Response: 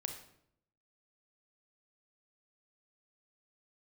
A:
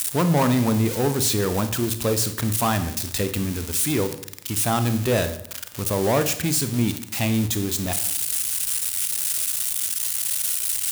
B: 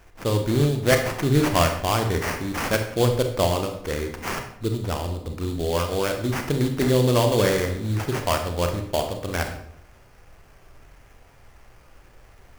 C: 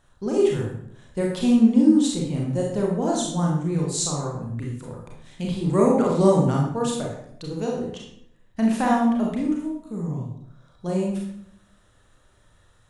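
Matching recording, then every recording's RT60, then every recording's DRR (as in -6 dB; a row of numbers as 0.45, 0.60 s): B; 0.70, 0.70, 0.70 s; 9.5, 4.5, -2.5 dB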